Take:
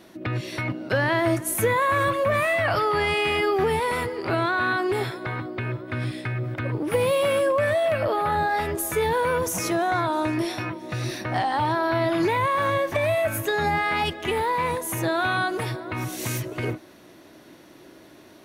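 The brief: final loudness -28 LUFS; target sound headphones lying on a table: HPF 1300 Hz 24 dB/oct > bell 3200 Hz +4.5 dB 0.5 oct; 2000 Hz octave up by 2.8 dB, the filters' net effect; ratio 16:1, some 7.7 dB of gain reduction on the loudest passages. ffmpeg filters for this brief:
-af "equalizer=f=2k:t=o:g=3.5,acompressor=threshold=-25dB:ratio=16,highpass=f=1.3k:w=0.5412,highpass=f=1.3k:w=1.3066,equalizer=f=3.2k:t=o:w=0.5:g=4.5,volume=4.5dB"

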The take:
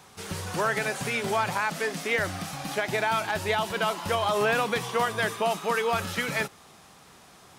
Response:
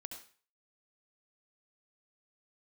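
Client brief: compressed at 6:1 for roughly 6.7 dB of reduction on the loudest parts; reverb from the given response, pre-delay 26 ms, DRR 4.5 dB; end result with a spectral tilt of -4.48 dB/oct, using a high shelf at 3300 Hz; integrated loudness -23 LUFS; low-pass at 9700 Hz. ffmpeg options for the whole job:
-filter_complex "[0:a]lowpass=9.7k,highshelf=f=3.3k:g=-7,acompressor=threshold=-29dB:ratio=6,asplit=2[a][b];[1:a]atrim=start_sample=2205,adelay=26[c];[b][c]afir=irnorm=-1:irlink=0,volume=-0.5dB[d];[a][d]amix=inputs=2:normalize=0,volume=9dB"

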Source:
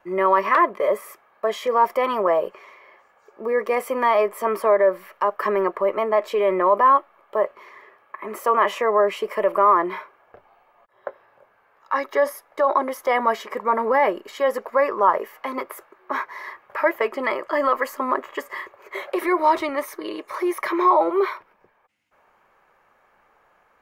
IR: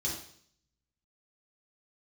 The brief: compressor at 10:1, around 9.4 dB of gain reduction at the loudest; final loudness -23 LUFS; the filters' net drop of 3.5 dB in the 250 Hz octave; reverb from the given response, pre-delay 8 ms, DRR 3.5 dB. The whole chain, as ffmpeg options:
-filter_complex "[0:a]equalizer=f=250:t=o:g=-6,acompressor=threshold=-22dB:ratio=10,asplit=2[a][b];[1:a]atrim=start_sample=2205,adelay=8[c];[b][c]afir=irnorm=-1:irlink=0,volume=-7dB[d];[a][d]amix=inputs=2:normalize=0,volume=3.5dB"

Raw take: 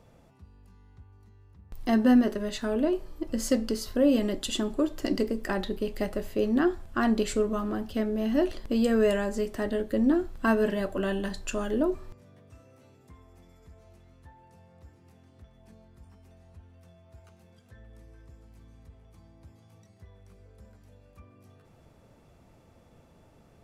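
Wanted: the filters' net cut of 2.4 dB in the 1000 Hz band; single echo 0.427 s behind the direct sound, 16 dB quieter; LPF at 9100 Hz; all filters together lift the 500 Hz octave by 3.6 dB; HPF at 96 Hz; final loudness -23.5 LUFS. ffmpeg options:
-af "highpass=96,lowpass=9.1k,equalizer=f=500:t=o:g=6,equalizer=f=1k:t=o:g=-6.5,aecho=1:1:427:0.158,volume=2dB"

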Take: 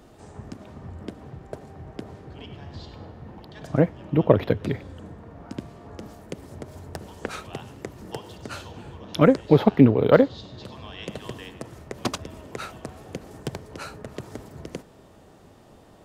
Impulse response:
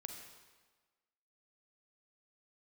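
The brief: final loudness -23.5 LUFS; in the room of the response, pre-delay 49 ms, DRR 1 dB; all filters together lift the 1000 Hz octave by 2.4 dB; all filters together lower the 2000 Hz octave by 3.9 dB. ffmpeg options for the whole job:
-filter_complex "[0:a]equalizer=f=1k:t=o:g=5.5,equalizer=f=2k:t=o:g=-8,asplit=2[a][b];[1:a]atrim=start_sample=2205,adelay=49[c];[b][c]afir=irnorm=-1:irlink=0,volume=2.5dB[d];[a][d]amix=inputs=2:normalize=0,volume=-3.5dB"

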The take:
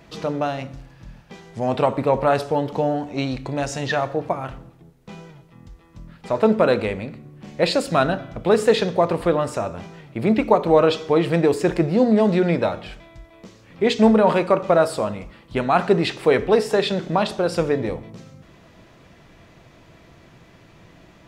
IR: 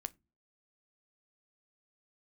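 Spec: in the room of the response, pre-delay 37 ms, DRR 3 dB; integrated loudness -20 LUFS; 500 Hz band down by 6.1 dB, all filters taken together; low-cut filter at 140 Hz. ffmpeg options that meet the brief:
-filter_complex "[0:a]highpass=140,equalizer=f=500:t=o:g=-7.5,asplit=2[a][b];[1:a]atrim=start_sample=2205,adelay=37[c];[b][c]afir=irnorm=-1:irlink=0,volume=-0.5dB[d];[a][d]amix=inputs=2:normalize=0,volume=2dB"

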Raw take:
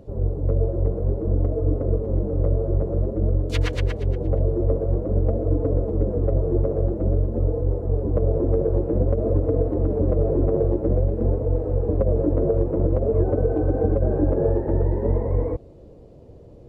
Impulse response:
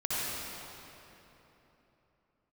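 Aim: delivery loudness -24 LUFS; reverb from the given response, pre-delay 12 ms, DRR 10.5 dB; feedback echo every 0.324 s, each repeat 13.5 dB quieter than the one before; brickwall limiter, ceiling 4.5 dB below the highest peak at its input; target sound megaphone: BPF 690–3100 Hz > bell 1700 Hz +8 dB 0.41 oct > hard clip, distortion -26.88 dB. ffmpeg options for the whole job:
-filter_complex "[0:a]alimiter=limit=-14dB:level=0:latency=1,aecho=1:1:324|648:0.211|0.0444,asplit=2[a][b];[1:a]atrim=start_sample=2205,adelay=12[c];[b][c]afir=irnorm=-1:irlink=0,volume=-19dB[d];[a][d]amix=inputs=2:normalize=0,highpass=690,lowpass=3.1k,equalizer=f=1.7k:t=o:w=0.41:g=8,asoftclip=type=hard:threshold=-24.5dB,volume=11.5dB"

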